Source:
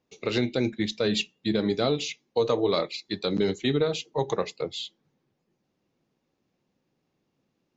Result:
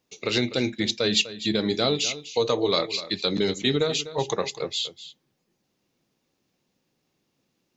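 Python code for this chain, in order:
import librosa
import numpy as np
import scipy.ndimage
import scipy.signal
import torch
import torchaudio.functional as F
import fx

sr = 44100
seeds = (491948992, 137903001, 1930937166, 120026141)

y = fx.high_shelf(x, sr, hz=2700.0, db=10.5)
y = y + 10.0 ** (-14.5 / 20.0) * np.pad(y, (int(249 * sr / 1000.0), 0))[:len(y)]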